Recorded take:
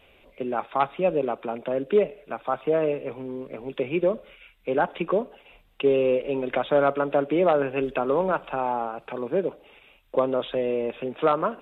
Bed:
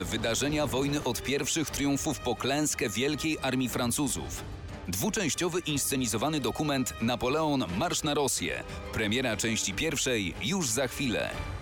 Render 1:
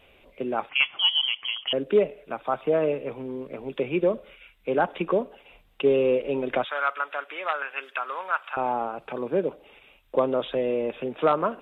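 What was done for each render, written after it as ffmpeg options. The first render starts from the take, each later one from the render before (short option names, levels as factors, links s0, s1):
-filter_complex "[0:a]asettb=1/sr,asplit=3[s0][s1][s2];[s0]atrim=end=0.694[s3];[s1]atrim=start=0.69:end=1.73,asetpts=PTS-STARTPTS,afade=t=in:d=0.004:c=qsin,afade=t=out:st=1.036:d=0.004:c=qsin,lowpass=f=3000:t=q:w=0.5098,lowpass=f=3000:t=q:w=0.6013,lowpass=f=3000:t=q:w=0.9,lowpass=f=3000:t=q:w=2.563,afreqshift=-3500[s4];[s2]atrim=start=1.726[s5];[s3][s4]acrossfade=d=0.004:c1=hsin:c2=qsin[s6];[s6][s5]acrossfade=d=0.004:c1=qsin:c2=hsin,asettb=1/sr,asplit=3[s7][s8][s9];[s7]atrim=end=6.644[s10];[s8]atrim=start=6.64:end=8.57,asetpts=PTS-STARTPTS,afade=t=in:d=0.004:c=qsin,afade=t=out:st=1.926:d=0.004:c=qsin,highpass=f=1400:t=q:w=1.7[s11];[s9]atrim=start=8.566[s12];[s10][s11]acrossfade=d=0.004:c1=hsin:c2=qsin[s13];[s13][s12]acrossfade=d=0.004:c1=qsin:c2=hsin"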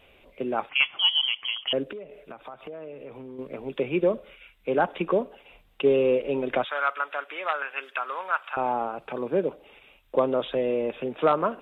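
-filter_complex "[0:a]asettb=1/sr,asplit=3[s0][s1][s2];[s0]atrim=end=1.924[s3];[s1]atrim=start=1.92:end=3.39,asetpts=PTS-STARTPTS,afade=t=in:d=0.004:c=qsin,afade=t=out:st=1.466:d=0.004:c=qsin,acompressor=threshold=0.0141:ratio=6:attack=3.2:release=140:knee=1:detection=peak[s4];[s2]atrim=start=3.386[s5];[s3][s4]acrossfade=d=0.004:c1=hsin:c2=qsin[s6];[s6][s5]acrossfade=d=0.004:c1=qsin:c2=hsin"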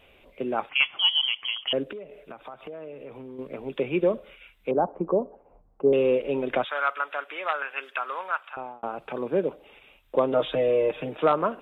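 -filter_complex "[0:a]asettb=1/sr,asplit=3[s0][s1][s2];[s0]atrim=end=4.714[s3];[s1]atrim=start=4.71:end=5.93,asetpts=PTS-STARTPTS,afade=t=in:d=0.004:c=qsin,afade=t=out:st=1.216:d=0.004:c=qsin,lowpass=f=1000:w=0.5412,lowpass=f=1000:w=1.3066[s4];[s2]atrim=start=5.926[s5];[s3][s4]acrossfade=d=0.004:c1=hsin:c2=qsin[s6];[s6][s5]acrossfade=d=0.004:c1=qsin:c2=hsin,asettb=1/sr,asplit=3[s7][s8][s9];[s7]atrim=end=10.324[s10];[s8]atrim=start=10.32:end=11.17,asetpts=PTS-STARTPTS,afade=t=in:d=0.004:c=qsin,afade=t=out:st=0.846:d=0.004:c=qsin,aecho=1:1:6.5:0.94,atrim=end_sample=37485[s11];[s9]atrim=start=11.166[s12];[s10][s11]acrossfade=d=0.004:c1=hsin:c2=qsin[s13];[s13][s12]acrossfade=d=0.004:c1=qsin:c2=hsin,asplit=2[s14][s15];[s14]atrim=end=8.83,asetpts=PTS-STARTPTS,afade=t=out:st=8.2:d=0.63[s16];[s15]atrim=start=8.83,asetpts=PTS-STARTPTS,afade=t=in:d=0.004:c=hsin[s17];[s16][s17]concat=n=2:v=0:a=1"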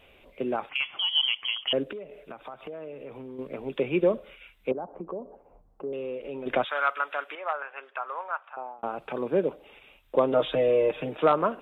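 -filter_complex "[0:a]asettb=1/sr,asplit=3[s0][s1][s2];[s0]atrim=end=0.554[s3];[s1]atrim=start=0.55:end=1.13,asetpts=PTS-STARTPTS,afade=t=in:d=0.004:c=qsin,afade=t=out:st=0.576:d=0.004:c=qsin,acompressor=threshold=0.0562:ratio=3:attack=3.2:release=140:knee=1:detection=peak[s4];[s2]atrim=start=1.126[s5];[s3][s4]acrossfade=d=0.004:c1=hsin:c2=qsin[s6];[s6][s5]acrossfade=d=0.004:c1=qsin:c2=hsin,asettb=1/sr,asplit=3[s7][s8][s9];[s7]atrim=end=4.724[s10];[s8]atrim=start=4.72:end=6.46,asetpts=PTS-STARTPTS,afade=t=in:d=0.004:c=qsin,afade=t=out:st=1.736:d=0.004:c=qsin,acompressor=threshold=0.0141:ratio=2.5:attack=3.2:release=140:knee=1:detection=peak[s11];[s9]atrim=start=6.456[s12];[s10][s11]acrossfade=d=0.004:c1=hsin:c2=qsin[s13];[s13][s12]acrossfade=d=0.004:c1=qsin:c2=hsin,asettb=1/sr,asplit=3[s14][s15][s16];[s14]atrim=end=7.354[s17];[s15]atrim=start=7.35:end=8.79,asetpts=PTS-STARTPTS,afade=t=in:d=0.004:c=qsin,afade=t=out:st=1.436:d=0.004:c=qsin,bandpass=f=770:t=q:w=1.1[s18];[s16]atrim=start=8.786[s19];[s17][s18]acrossfade=d=0.004:c1=hsin:c2=qsin[s20];[s20][s19]acrossfade=d=0.004:c1=qsin:c2=hsin"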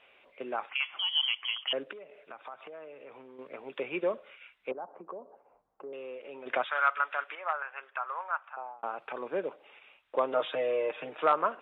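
-af "bandpass=f=1500:t=q:w=0.79:csg=0"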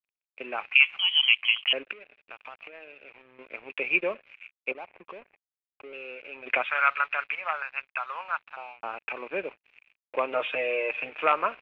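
-af "aeval=exprs='sgn(val(0))*max(abs(val(0))-0.00266,0)':c=same,lowpass=f=2500:t=q:w=8"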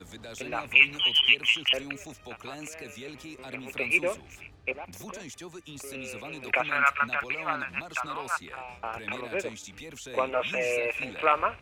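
-filter_complex "[1:a]volume=0.2[s0];[0:a][s0]amix=inputs=2:normalize=0"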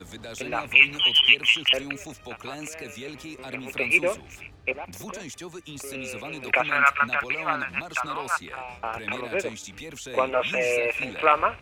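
-af "volume=1.58,alimiter=limit=0.708:level=0:latency=1"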